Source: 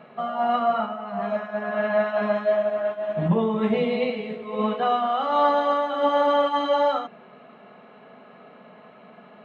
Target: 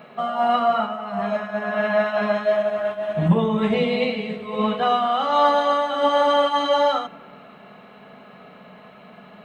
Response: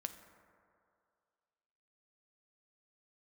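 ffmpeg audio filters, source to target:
-filter_complex "[0:a]asplit=2[s0][s1];[s1]asubboost=boost=8.5:cutoff=170[s2];[1:a]atrim=start_sample=2205[s3];[s2][s3]afir=irnorm=-1:irlink=0,volume=0.473[s4];[s0][s4]amix=inputs=2:normalize=0,crystalizer=i=2.5:c=0"

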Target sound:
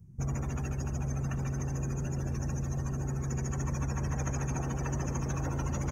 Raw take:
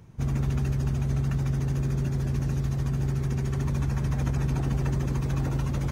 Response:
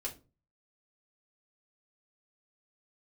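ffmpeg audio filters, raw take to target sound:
-filter_complex "[0:a]afftdn=nr=23:nf=-45,highshelf=f=7200:g=-9.5,bandreject=f=60:t=h:w=6,bandreject=f=120:t=h:w=6,bandreject=f=180:t=h:w=6,bandreject=f=240:t=h:w=6,bandreject=f=300:t=h:w=6,bandreject=f=360:t=h:w=6,bandreject=f=420:t=h:w=6,acrossover=split=450|1900[s0][s1][s2];[s0]alimiter=level_in=1.33:limit=0.0631:level=0:latency=1,volume=0.75[s3];[s3][s1][s2]amix=inputs=3:normalize=0,aexciter=amount=12:drive=1:freq=5600,asplit=2[s4][s5];[s5]aecho=0:1:60|136|270|851:0.119|0.398|0.126|0.15[s6];[s4][s6]amix=inputs=2:normalize=0"

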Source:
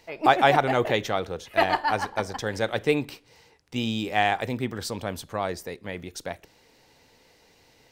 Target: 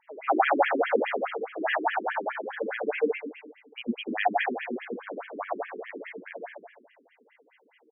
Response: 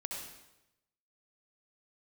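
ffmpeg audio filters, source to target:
-filter_complex "[0:a]aecho=1:1:50|79:0.501|0.501[s0];[1:a]atrim=start_sample=2205,asetrate=35280,aresample=44100[s1];[s0][s1]afir=irnorm=-1:irlink=0,afftfilt=real='re*between(b*sr/1024,290*pow(2400/290,0.5+0.5*sin(2*PI*4.8*pts/sr))/1.41,290*pow(2400/290,0.5+0.5*sin(2*PI*4.8*pts/sr))*1.41)':imag='im*between(b*sr/1024,290*pow(2400/290,0.5+0.5*sin(2*PI*4.8*pts/sr))/1.41,290*pow(2400/290,0.5+0.5*sin(2*PI*4.8*pts/sr))*1.41)':win_size=1024:overlap=0.75"

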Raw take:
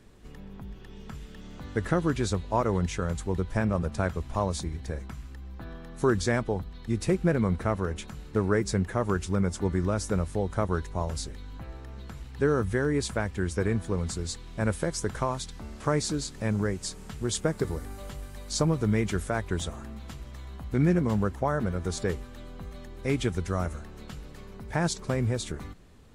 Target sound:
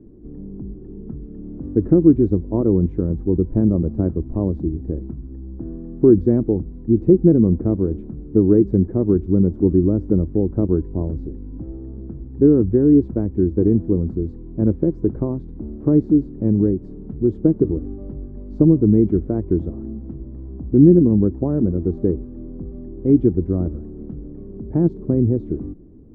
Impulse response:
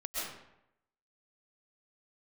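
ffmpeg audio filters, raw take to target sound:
-af "lowpass=f=320:t=q:w=3.8,volume=2.24"

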